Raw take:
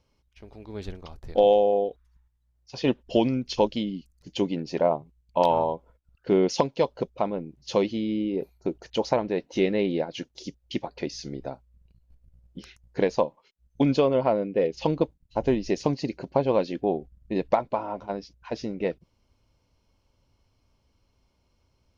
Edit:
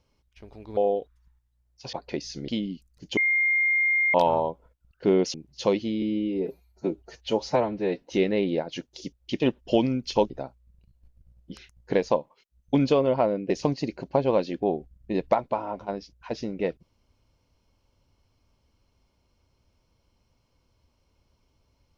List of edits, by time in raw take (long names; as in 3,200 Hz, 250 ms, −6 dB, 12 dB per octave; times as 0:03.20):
0:00.77–0:01.66: remove
0:02.82–0:03.72: swap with 0:10.82–0:11.37
0:04.41–0:05.38: beep over 2,120 Hz −19.5 dBFS
0:06.58–0:07.43: remove
0:08.11–0:09.45: time-stretch 1.5×
0:14.57–0:15.71: remove